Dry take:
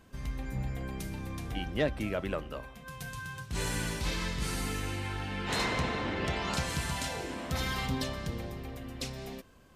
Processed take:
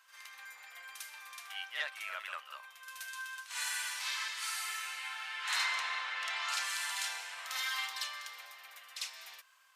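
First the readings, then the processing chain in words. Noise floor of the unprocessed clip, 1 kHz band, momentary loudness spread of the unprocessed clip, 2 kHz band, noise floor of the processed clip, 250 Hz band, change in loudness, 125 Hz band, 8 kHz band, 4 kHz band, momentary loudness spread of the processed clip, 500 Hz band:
-51 dBFS, -4.0 dB, 10 LU, +1.0 dB, -58 dBFS, under -40 dB, -2.0 dB, under -40 dB, +1.0 dB, +1.0 dB, 15 LU, -22.0 dB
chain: high-pass 1.1 kHz 24 dB/octave; on a send: reverse echo 50 ms -6.5 dB

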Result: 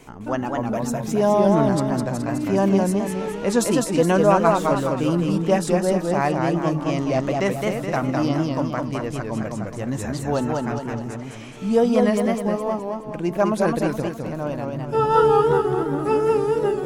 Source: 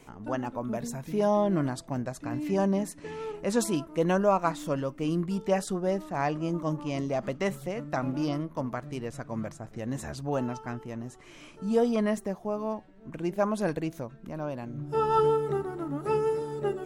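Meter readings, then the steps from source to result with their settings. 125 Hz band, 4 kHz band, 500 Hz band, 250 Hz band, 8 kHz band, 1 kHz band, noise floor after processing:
+9.0 dB, +8.5 dB, +8.5 dB, +8.5 dB, +8.5 dB, +8.5 dB, -33 dBFS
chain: modulated delay 210 ms, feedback 47%, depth 137 cents, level -3 dB; trim +6.5 dB

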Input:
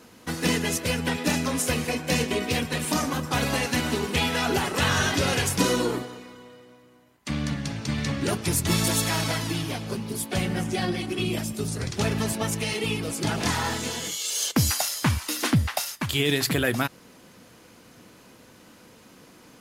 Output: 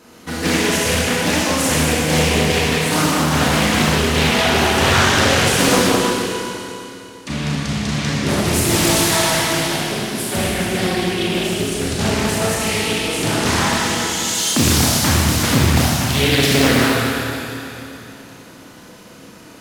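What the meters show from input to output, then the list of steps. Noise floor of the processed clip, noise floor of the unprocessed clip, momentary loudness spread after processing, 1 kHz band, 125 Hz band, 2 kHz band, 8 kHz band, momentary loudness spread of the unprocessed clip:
-41 dBFS, -52 dBFS, 10 LU, +10.5 dB, +8.0 dB, +10.0 dB, +9.5 dB, 7 LU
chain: Schroeder reverb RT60 3 s, combs from 26 ms, DRR -7 dB; loudspeaker Doppler distortion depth 0.9 ms; trim +2.5 dB

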